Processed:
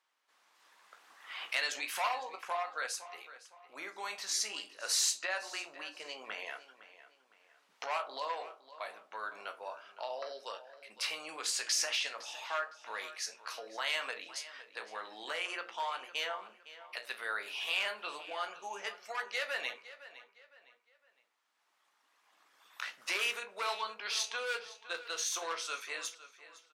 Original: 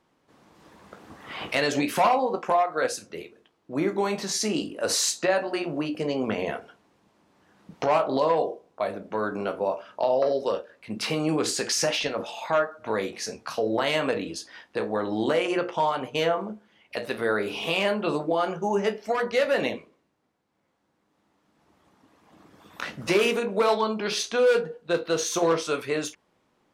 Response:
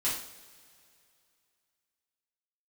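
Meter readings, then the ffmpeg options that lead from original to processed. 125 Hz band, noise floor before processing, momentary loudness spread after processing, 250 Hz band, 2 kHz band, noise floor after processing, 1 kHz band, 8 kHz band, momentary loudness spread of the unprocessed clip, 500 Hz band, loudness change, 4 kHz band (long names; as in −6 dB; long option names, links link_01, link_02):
below −40 dB, −70 dBFS, 14 LU, −30.5 dB, −6.0 dB, −74 dBFS, −11.5 dB, −5.0 dB, 11 LU, −20.5 dB, −10.5 dB, −5.0 dB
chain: -filter_complex "[0:a]highpass=1300,asplit=2[link_01][link_02];[link_02]adelay=510,lowpass=frequency=4800:poles=1,volume=-15dB,asplit=2[link_03][link_04];[link_04]adelay=510,lowpass=frequency=4800:poles=1,volume=0.37,asplit=2[link_05][link_06];[link_06]adelay=510,lowpass=frequency=4800:poles=1,volume=0.37[link_07];[link_01][link_03][link_05][link_07]amix=inputs=4:normalize=0,volume=-5dB"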